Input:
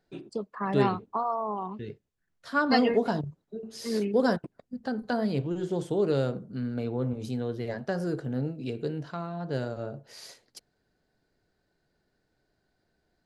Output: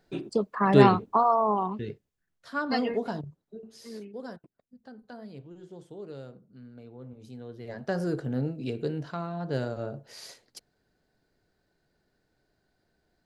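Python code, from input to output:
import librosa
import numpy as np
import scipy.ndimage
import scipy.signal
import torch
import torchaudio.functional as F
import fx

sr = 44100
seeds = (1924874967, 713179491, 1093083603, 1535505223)

y = fx.gain(x, sr, db=fx.line((1.52, 7.0), (2.54, -5.0), (3.59, -5.0), (4.13, -16.0), (6.95, -16.0), (7.61, -9.0), (7.92, 1.0)))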